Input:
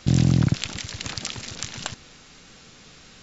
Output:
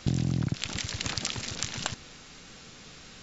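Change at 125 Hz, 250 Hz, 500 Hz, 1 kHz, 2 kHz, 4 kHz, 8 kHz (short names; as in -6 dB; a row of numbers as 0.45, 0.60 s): -8.5 dB, -8.5 dB, -5.0 dB, -2.0 dB, -2.0 dB, -1.5 dB, n/a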